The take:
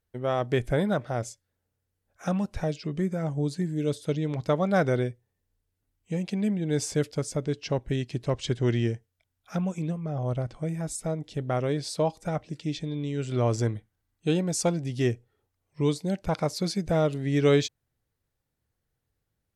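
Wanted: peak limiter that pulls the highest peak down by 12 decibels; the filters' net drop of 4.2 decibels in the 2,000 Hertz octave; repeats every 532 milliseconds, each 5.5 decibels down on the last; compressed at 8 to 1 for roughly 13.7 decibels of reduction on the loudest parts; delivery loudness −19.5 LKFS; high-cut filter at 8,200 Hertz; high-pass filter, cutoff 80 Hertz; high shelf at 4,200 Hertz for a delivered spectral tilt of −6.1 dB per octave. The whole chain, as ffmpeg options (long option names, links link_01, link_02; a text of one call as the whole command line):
ffmpeg -i in.wav -af "highpass=80,lowpass=8200,equalizer=frequency=2000:width_type=o:gain=-4.5,highshelf=frequency=4200:gain=-5.5,acompressor=threshold=-31dB:ratio=8,alimiter=level_in=8dB:limit=-24dB:level=0:latency=1,volume=-8dB,aecho=1:1:532|1064|1596|2128|2660|3192|3724:0.531|0.281|0.149|0.079|0.0419|0.0222|0.0118,volume=21dB" out.wav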